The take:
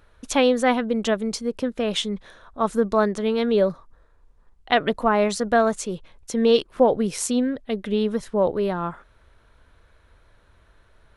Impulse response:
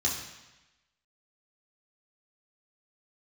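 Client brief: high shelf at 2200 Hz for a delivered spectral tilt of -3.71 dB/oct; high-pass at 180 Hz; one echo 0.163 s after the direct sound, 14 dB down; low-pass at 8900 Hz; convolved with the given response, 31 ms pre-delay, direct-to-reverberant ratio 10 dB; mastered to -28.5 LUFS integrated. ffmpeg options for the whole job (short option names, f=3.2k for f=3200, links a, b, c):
-filter_complex "[0:a]highpass=180,lowpass=8.9k,highshelf=f=2.2k:g=-4.5,aecho=1:1:163:0.2,asplit=2[a][b];[1:a]atrim=start_sample=2205,adelay=31[c];[b][c]afir=irnorm=-1:irlink=0,volume=-17.5dB[d];[a][d]amix=inputs=2:normalize=0,volume=-5.5dB"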